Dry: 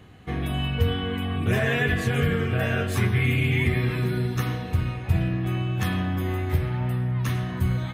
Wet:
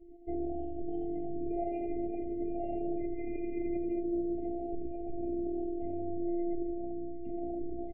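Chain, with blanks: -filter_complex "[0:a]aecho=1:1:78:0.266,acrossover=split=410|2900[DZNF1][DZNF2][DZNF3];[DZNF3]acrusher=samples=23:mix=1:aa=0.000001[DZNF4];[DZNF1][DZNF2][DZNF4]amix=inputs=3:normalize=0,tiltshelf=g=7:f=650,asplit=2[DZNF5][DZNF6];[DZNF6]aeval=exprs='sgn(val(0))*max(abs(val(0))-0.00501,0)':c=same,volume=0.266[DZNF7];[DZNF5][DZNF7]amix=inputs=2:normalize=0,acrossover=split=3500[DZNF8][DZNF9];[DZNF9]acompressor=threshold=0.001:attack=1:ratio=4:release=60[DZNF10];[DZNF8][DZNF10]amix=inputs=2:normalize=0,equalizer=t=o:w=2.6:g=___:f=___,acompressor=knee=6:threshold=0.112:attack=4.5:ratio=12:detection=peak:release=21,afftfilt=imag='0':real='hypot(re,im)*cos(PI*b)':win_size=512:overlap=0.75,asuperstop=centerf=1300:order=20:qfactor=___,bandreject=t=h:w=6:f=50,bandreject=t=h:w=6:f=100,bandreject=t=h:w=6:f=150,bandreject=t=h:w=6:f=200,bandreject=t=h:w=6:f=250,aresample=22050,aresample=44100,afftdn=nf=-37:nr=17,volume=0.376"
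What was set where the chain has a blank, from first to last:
10.5, 490, 1.1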